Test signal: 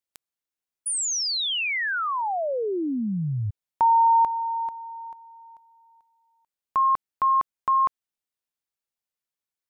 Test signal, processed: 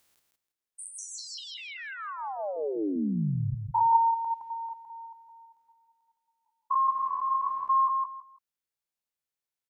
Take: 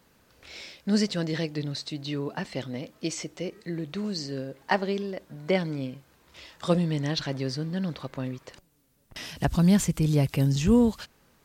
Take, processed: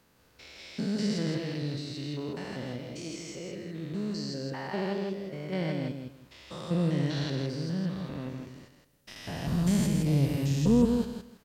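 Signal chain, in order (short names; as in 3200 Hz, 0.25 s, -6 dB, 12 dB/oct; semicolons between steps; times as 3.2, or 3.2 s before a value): stepped spectrum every 0.2 s; on a send: feedback echo 0.163 s, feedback 21%, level -5 dB; on the sum: gain -1.5 dB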